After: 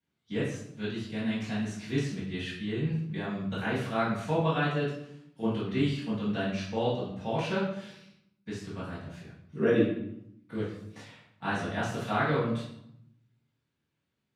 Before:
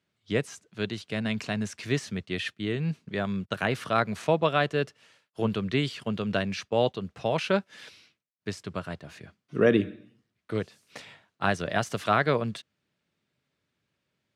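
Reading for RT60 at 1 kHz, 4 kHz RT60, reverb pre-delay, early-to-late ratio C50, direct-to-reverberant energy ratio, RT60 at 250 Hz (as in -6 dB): 0.75 s, 0.55 s, 4 ms, 2.0 dB, -13.0 dB, 1.0 s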